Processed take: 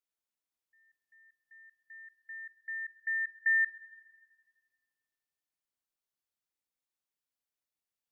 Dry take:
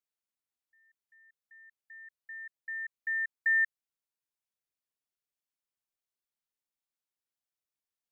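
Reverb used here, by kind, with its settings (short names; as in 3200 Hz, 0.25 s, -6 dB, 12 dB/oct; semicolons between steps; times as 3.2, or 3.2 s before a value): FDN reverb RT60 2 s, high-frequency decay 0.6×, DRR 10 dB; gain -1.5 dB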